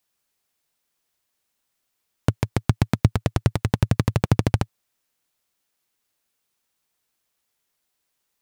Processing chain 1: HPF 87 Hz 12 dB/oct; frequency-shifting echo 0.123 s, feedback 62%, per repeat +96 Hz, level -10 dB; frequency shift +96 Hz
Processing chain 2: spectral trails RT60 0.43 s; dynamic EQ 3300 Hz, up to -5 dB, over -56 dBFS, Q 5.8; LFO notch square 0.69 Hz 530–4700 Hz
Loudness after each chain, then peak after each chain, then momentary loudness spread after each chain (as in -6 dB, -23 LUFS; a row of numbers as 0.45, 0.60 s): -24.0, -20.5 LUFS; -6.0, -3.0 dBFS; 8, 5 LU